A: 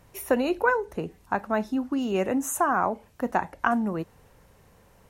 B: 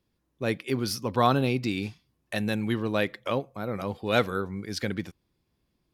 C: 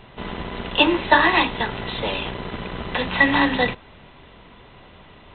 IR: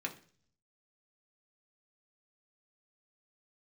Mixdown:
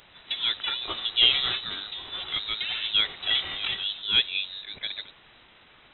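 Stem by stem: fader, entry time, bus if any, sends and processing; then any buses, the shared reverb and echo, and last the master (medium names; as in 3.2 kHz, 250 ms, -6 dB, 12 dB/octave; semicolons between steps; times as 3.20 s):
-8.0 dB, 0.00 s, no send, comb filter that takes the minimum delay 2.4 ms
-1.5 dB, 0.00 s, no send, fifteen-band graphic EQ 250 Hz -9 dB, 630 Hz +11 dB, 1.6 kHz +3 dB; random flutter of the level, depth 55%
-17.5 dB, 0.10 s, no send, formants flattened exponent 0.6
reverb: none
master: word length cut 8-bit, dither triangular; frequency inversion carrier 3.9 kHz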